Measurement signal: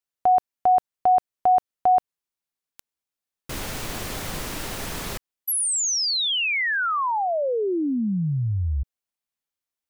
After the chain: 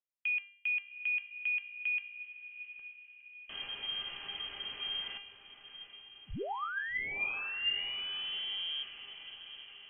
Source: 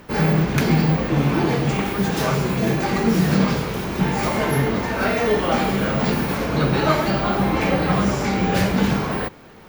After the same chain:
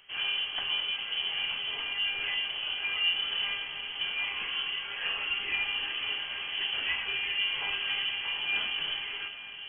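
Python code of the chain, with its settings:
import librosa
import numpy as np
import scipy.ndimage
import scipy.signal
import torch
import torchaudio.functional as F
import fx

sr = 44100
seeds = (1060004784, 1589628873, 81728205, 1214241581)

p1 = fx.comb_fb(x, sr, f0_hz=400.0, decay_s=0.68, harmonics='all', damping=0.3, mix_pct=90)
p2 = p1 + fx.echo_diffused(p1, sr, ms=778, feedback_pct=53, wet_db=-12.0, dry=0)
p3 = fx.freq_invert(p2, sr, carrier_hz=3200)
y = p3 * 10.0 ** (3.5 / 20.0)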